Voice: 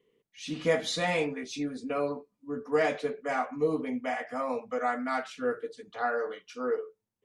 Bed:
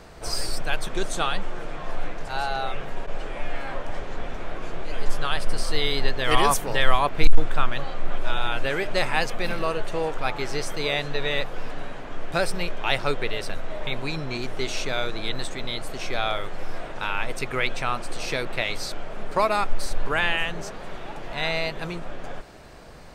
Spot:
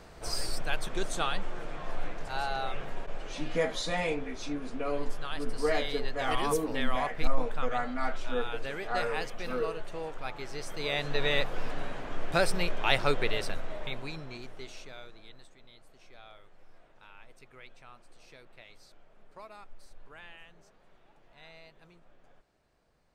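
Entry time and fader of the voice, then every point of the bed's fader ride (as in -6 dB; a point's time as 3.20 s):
2.90 s, -3.0 dB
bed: 2.90 s -5.5 dB
3.62 s -11.5 dB
10.55 s -11.5 dB
11.21 s -2 dB
13.36 s -2 dB
15.54 s -26.5 dB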